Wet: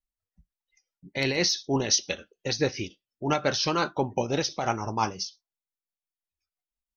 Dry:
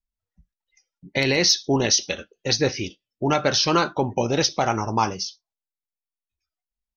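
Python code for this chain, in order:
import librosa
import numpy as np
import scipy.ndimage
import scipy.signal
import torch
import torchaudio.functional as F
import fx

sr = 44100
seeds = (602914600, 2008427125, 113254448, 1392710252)

y = fx.tremolo_shape(x, sr, shape='triangle', hz=5.8, depth_pct=55)
y = y * 10.0 ** (-3.0 / 20.0)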